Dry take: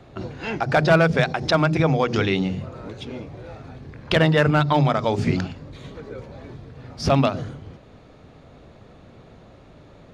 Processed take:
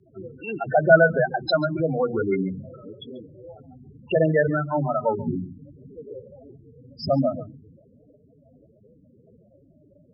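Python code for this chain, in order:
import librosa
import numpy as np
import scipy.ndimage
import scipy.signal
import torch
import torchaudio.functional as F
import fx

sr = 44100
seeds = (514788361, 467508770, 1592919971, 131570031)

p1 = fx.spec_topn(x, sr, count=8)
p2 = p1 + fx.echo_single(p1, sr, ms=138, db=-19.0, dry=0)
p3 = fx.rotary_switch(p2, sr, hz=0.7, then_hz=6.0, switch_at_s=6.91)
p4 = fx.highpass(p3, sr, hz=650.0, slope=6)
y = F.gain(torch.from_numpy(p4), 7.5).numpy()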